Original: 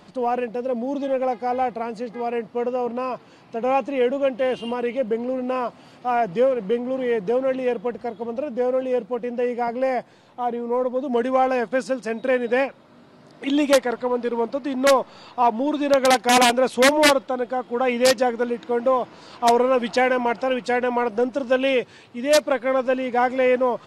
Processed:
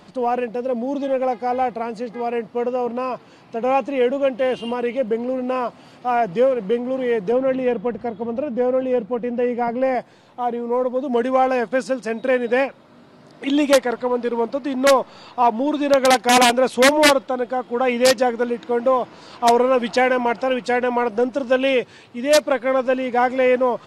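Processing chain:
0:07.32–0:09.95: bass and treble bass +6 dB, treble −7 dB
level +2 dB

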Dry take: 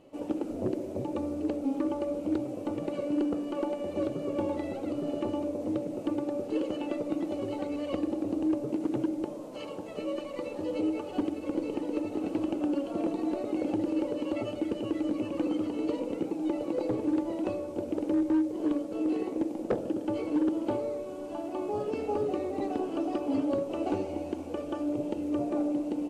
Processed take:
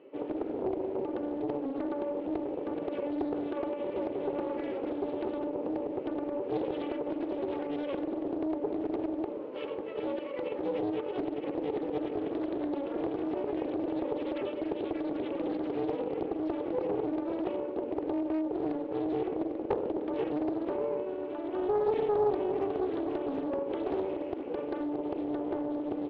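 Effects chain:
brickwall limiter −27 dBFS, peak gain reduction 6.5 dB
loudspeaker in its box 350–2,700 Hz, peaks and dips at 410 Hz +9 dB, 700 Hz −10 dB, 1,100 Hz −4 dB
highs frequency-modulated by the lows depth 0.4 ms
level +3.5 dB

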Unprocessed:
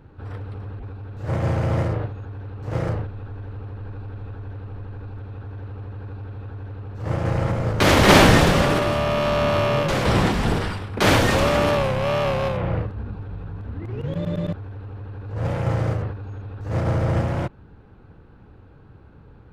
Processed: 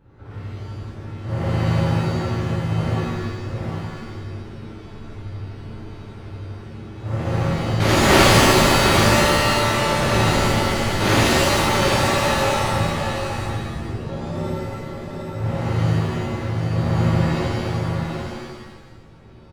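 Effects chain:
single-tap delay 752 ms −5 dB
reverb with rising layers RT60 1.1 s, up +7 semitones, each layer −2 dB, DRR −6 dB
level −9 dB

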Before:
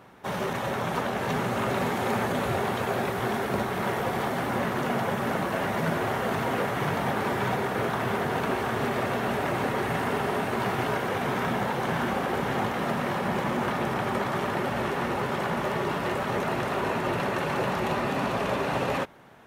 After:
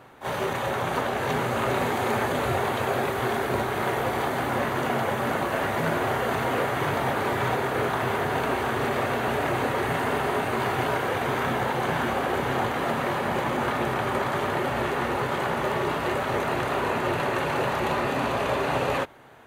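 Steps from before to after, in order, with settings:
parametric band 190 Hz −11 dB 0.36 octaves
notch filter 5,400 Hz, Q 8.2
backwards echo 31 ms −9.5 dB
level +2 dB

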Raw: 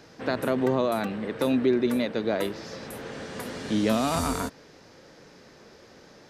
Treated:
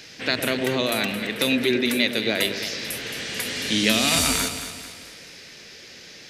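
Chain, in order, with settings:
high shelf with overshoot 1,600 Hz +13 dB, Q 1.5
delay that swaps between a low-pass and a high-pass 110 ms, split 860 Hz, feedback 68%, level −7 dB

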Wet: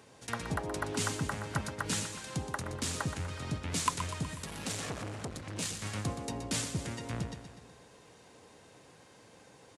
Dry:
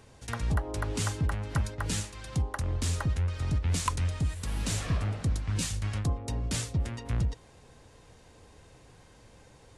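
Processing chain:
high-pass filter 170 Hz 12 dB per octave
repeating echo 123 ms, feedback 57%, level −9.5 dB
0:04.42–0:05.82: saturating transformer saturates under 1,000 Hz

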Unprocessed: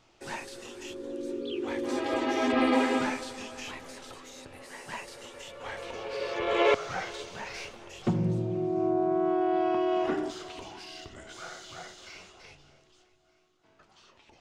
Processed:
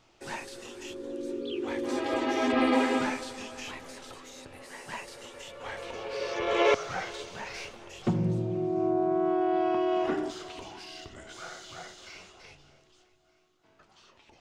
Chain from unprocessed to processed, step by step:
0:06.16–0:06.83: parametric band 5,800 Hz +7.5 dB 0.32 octaves

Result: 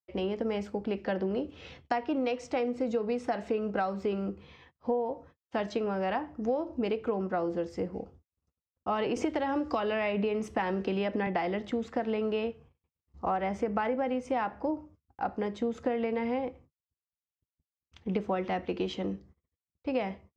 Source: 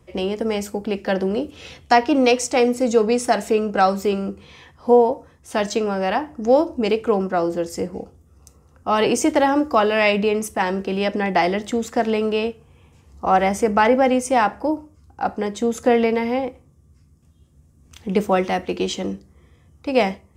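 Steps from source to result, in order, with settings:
dynamic equaliser 6,400 Hz, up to −4 dB, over −42 dBFS, Q 1.3
downward compressor 10 to 1, threshold −19 dBFS, peak gain reduction 11 dB
high-frequency loss of the air 170 metres
noise gate −46 dBFS, range −56 dB
0:09.16–0:11.27: multiband upward and downward compressor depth 100%
level −6.5 dB

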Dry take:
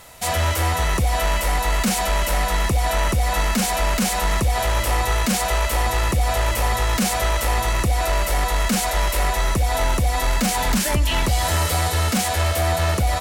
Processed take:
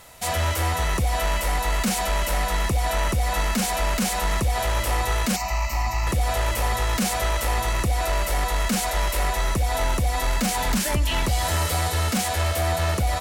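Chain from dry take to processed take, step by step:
0:01.98–0:03.64: floating-point word with a short mantissa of 8 bits
0:05.36–0:06.07: phaser with its sweep stopped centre 2,300 Hz, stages 8
level −3 dB

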